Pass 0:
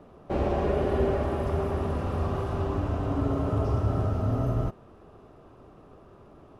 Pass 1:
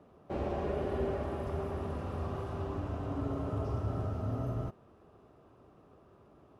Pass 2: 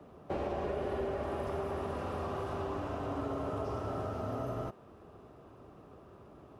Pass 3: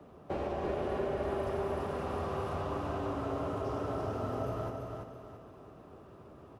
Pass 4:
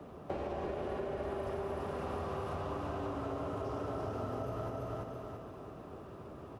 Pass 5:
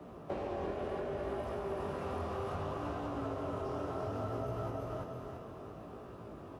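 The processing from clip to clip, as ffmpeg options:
ffmpeg -i in.wav -af "highpass=53,volume=-8dB" out.wav
ffmpeg -i in.wav -filter_complex "[0:a]acrossover=split=180|360[link_01][link_02][link_03];[link_01]acompressor=threshold=-50dB:ratio=4[link_04];[link_02]acompressor=threshold=-52dB:ratio=4[link_05];[link_03]acompressor=threshold=-40dB:ratio=4[link_06];[link_04][link_05][link_06]amix=inputs=3:normalize=0,volume=5.5dB" out.wav
ffmpeg -i in.wav -af "aecho=1:1:335|670|1005|1340|1675:0.596|0.226|0.086|0.0327|0.0124" out.wav
ffmpeg -i in.wav -af "acompressor=threshold=-40dB:ratio=5,volume=4.5dB" out.wav
ffmpeg -i in.wav -af "flanger=delay=16.5:depth=7.4:speed=0.66,volume=3dB" out.wav

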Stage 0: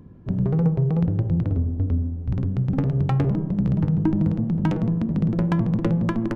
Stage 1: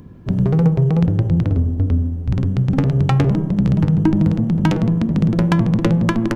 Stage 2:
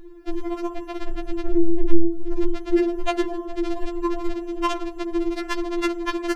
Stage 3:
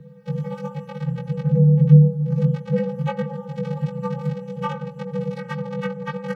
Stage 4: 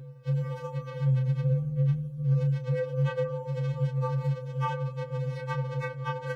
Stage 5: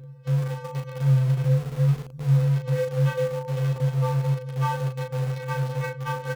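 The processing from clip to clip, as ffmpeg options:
ffmpeg -i in.wav -af "highshelf=frequency=2200:gain=10,volume=5.5dB" out.wav
ffmpeg -i in.wav -af "aeval=exprs='val(0)*sin(2*PI*83*n/s)':channel_layout=same,afftfilt=real='re*4*eq(mod(b,16),0)':imag='im*4*eq(mod(b,16),0)':win_size=2048:overlap=0.75,volume=4dB" out.wav
ffmpeg -i in.wav -filter_complex "[0:a]acrossover=split=190|2400[link_01][link_02][link_03];[link_03]acompressor=threshold=-48dB:ratio=6[link_04];[link_01][link_02][link_04]amix=inputs=3:normalize=0,aeval=exprs='val(0)*sin(2*PI*150*n/s)':channel_layout=same" out.wav
ffmpeg -i in.wav -filter_complex "[0:a]acrossover=split=1300[link_01][link_02];[link_01]acompressor=threshold=-22dB:ratio=6[link_03];[link_03][link_02]amix=inputs=2:normalize=0,afftfilt=real='re*2.45*eq(mod(b,6),0)':imag='im*2.45*eq(mod(b,6),0)':win_size=2048:overlap=0.75,volume=3dB" out.wav
ffmpeg -i in.wav -filter_complex "[0:a]asplit=2[link_01][link_02];[link_02]acrusher=bits=4:mix=0:aa=0.000001,volume=-10.5dB[link_03];[link_01][link_03]amix=inputs=2:normalize=0,asplit=2[link_04][link_05];[link_05]adelay=37,volume=-5dB[link_06];[link_04][link_06]amix=inputs=2:normalize=0" out.wav

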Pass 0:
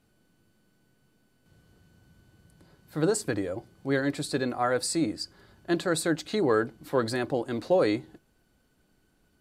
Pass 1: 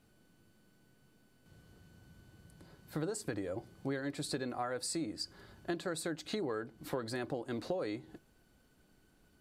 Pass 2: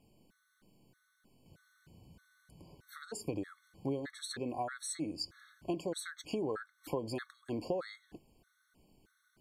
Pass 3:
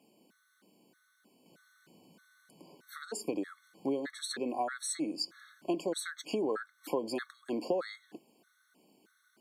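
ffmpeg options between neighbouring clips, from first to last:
ffmpeg -i in.wav -af "acompressor=threshold=-34dB:ratio=10" out.wav
ffmpeg -i in.wav -af "afftfilt=real='re*gt(sin(2*PI*1.6*pts/sr)*(1-2*mod(floor(b*sr/1024/1100),2)),0)':imag='im*gt(sin(2*PI*1.6*pts/sr)*(1-2*mod(floor(b*sr/1024/1100),2)),0)':win_size=1024:overlap=0.75,volume=1.5dB" out.wav
ffmpeg -i in.wav -af "highpass=frequency=210:width=0.5412,highpass=frequency=210:width=1.3066,volume=4dB" out.wav

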